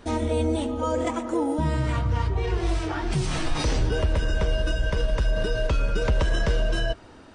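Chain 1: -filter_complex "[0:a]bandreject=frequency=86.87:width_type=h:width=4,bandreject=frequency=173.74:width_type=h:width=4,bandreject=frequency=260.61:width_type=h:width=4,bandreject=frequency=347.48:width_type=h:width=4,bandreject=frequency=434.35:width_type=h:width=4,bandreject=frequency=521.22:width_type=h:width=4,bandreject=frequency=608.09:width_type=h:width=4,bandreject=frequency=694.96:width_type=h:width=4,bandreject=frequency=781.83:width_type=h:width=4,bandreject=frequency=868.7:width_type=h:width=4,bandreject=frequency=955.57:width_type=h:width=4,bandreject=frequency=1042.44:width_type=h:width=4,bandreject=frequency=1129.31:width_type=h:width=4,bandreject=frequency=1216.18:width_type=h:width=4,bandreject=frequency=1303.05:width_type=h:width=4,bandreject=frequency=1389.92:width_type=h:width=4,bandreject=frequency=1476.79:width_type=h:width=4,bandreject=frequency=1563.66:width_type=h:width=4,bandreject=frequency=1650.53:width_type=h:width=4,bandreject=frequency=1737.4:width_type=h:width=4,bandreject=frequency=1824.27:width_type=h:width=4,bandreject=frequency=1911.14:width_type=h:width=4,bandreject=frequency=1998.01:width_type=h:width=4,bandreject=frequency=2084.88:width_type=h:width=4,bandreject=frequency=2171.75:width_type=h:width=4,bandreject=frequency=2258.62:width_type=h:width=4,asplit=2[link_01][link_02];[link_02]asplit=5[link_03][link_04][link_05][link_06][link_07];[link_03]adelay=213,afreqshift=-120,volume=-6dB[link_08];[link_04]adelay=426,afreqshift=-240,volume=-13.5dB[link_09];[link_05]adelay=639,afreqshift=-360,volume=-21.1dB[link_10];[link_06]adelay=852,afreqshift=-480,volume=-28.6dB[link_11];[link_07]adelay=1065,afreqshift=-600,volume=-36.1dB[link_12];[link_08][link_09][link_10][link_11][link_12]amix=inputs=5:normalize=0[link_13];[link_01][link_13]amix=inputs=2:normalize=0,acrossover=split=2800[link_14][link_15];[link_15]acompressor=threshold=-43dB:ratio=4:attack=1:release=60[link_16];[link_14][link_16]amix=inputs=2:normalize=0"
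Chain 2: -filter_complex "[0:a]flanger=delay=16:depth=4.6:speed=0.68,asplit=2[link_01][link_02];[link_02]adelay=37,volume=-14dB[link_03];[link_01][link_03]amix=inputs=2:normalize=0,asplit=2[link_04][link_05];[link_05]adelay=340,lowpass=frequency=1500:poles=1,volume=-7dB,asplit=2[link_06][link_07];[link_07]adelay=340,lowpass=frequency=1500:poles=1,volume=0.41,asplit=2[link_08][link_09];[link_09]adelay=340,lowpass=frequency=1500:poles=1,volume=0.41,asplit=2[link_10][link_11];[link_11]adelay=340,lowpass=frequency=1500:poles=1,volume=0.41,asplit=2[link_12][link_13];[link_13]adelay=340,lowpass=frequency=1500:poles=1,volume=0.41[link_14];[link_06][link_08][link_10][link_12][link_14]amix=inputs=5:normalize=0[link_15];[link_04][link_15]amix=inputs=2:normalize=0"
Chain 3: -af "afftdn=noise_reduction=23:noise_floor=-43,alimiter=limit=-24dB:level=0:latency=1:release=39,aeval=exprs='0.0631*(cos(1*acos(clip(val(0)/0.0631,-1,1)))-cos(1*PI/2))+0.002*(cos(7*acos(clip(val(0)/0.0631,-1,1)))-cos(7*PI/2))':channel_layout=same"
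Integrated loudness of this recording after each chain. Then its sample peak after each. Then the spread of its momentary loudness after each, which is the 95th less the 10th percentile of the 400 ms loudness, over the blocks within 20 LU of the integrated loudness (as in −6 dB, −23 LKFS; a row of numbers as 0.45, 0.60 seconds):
−25.0, −28.5, −32.5 LKFS; −11.0, −13.5, −23.5 dBFS; 3, 3, 2 LU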